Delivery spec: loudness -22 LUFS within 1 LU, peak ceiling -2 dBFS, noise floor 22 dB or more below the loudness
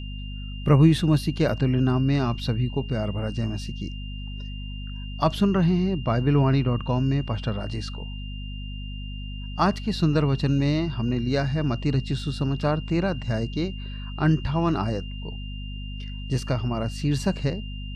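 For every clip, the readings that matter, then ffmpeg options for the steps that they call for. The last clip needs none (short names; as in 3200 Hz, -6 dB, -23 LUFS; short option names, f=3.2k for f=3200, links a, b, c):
hum 50 Hz; harmonics up to 250 Hz; hum level -32 dBFS; steady tone 2800 Hz; tone level -42 dBFS; loudness -24.5 LUFS; peak -6.0 dBFS; loudness target -22.0 LUFS
-> -af "bandreject=f=50:t=h:w=6,bandreject=f=100:t=h:w=6,bandreject=f=150:t=h:w=6,bandreject=f=200:t=h:w=6,bandreject=f=250:t=h:w=6"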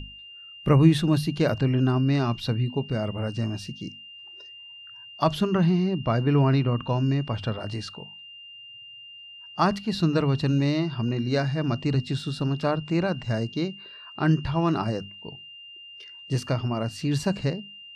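hum none; steady tone 2800 Hz; tone level -42 dBFS
-> -af "bandreject=f=2.8k:w=30"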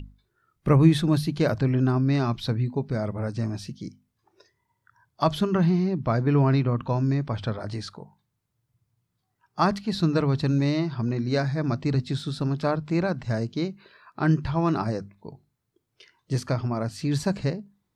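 steady tone none; loudness -25.0 LUFS; peak -6.5 dBFS; loudness target -22.0 LUFS
-> -af "volume=3dB"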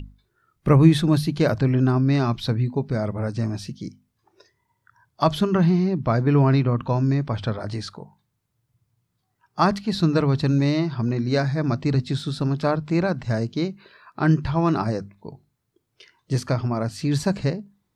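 loudness -22.0 LUFS; peak -3.5 dBFS; noise floor -75 dBFS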